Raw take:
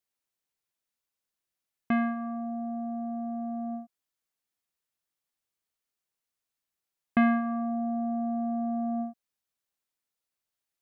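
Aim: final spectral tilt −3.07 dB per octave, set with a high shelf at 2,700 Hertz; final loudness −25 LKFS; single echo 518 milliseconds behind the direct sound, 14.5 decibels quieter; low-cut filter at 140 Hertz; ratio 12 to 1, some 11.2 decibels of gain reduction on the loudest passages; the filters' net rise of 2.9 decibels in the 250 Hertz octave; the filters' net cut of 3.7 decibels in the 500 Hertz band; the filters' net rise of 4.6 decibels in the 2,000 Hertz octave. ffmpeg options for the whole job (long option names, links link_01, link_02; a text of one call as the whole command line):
ffmpeg -i in.wav -af "highpass=140,equalizer=frequency=250:width_type=o:gain=5,equalizer=frequency=500:width_type=o:gain=-8.5,equalizer=frequency=2000:width_type=o:gain=8.5,highshelf=frequency=2700:gain=-6,acompressor=threshold=-26dB:ratio=12,aecho=1:1:518:0.188,volume=7dB" out.wav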